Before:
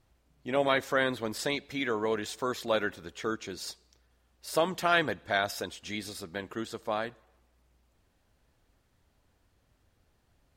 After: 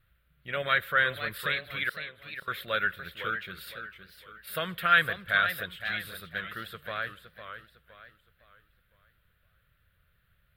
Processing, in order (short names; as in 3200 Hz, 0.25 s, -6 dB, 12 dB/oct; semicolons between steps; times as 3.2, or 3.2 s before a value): 1.89–2.48 flipped gate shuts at -28 dBFS, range -30 dB; EQ curve 180 Hz 0 dB, 260 Hz -18 dB, 550 Hz -5 dB, 870 Hz -17 dB, 1400 Hz +8 dB, 2200 Hz +3 dB, 3700 Hz +2 dB, 6200 Hz -26 dB, 9000 Hz -6 dB, 14000 Hz +8 dB; warbling echo 0.51 s, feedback 37%, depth 164 cents, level -9.5 dB